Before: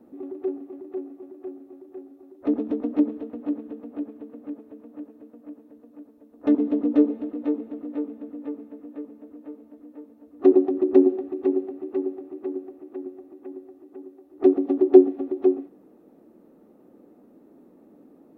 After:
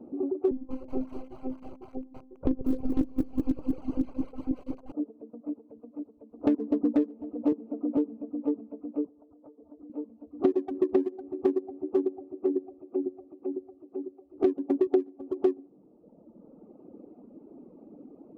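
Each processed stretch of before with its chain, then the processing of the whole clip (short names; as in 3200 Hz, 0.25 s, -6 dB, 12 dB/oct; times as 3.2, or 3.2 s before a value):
0.51–4.92 monotone LPC vocoder at 8 kHz 260 Hz + dynamic EQ 840 Hz, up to -7 dB, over -57 dBFS, Q 3.9 + lo-fi delay 0.193 s, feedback 55%, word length 7-bit, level -4 dB
7.52–7.97 low shelf 110 Hz -8.5 dB + three-band squash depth 70%
9.06–9.9 LPF 1600 Hz 24 dB/oct + bell 220 Hz -14.5 dB 0.22 oct + compressor 8:1, threshold -48 dBFS
12.25–14.87 bell 920 Hz -4 dB 0.53 oct + notches 50/100/150/200/250/300 Hz
whole clip: Wiener smoothing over 25 samples; reverb removal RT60 1.4 s; compressor 12:1, threshold -28 dBFS; gain +7 dB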